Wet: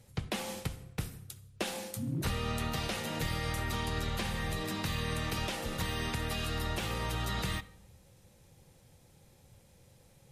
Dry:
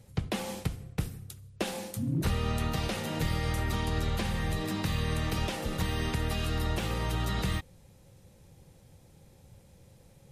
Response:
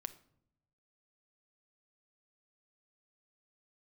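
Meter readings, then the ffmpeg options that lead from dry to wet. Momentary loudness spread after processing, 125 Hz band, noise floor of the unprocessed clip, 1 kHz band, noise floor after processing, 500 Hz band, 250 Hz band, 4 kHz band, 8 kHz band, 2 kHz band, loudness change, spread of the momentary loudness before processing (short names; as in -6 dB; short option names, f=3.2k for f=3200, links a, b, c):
6 LU, -5.0 dB, -58 dBFS, -1.5 dB, -62 dBFS, -3.0 dB, -4.5 dB, 0.0 dB, 0.0 dB, -0.5 dB, -3.0 dB, 6 LU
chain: -filter_complex "[0:a]asplit=2[a][b];[1:a]atrim=start_sample=2205,asetrate=31311,aresample=44100,lowshelf=f=490:g=-11[c];[b][c]afir=irnorm=-1:irlink=0,volume=6dB[d];[a][d]amix=inputs=2:normalize=0,volume=-8.5dB"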